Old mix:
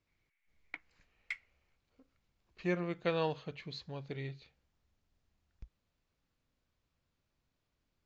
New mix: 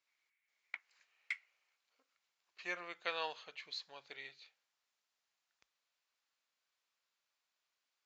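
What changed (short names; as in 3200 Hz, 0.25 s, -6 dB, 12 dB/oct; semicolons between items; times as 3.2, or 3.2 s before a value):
speech: add high shelf 5500 Hz +6.5 dB; master: add HPF 960 Hz 12 dB/oct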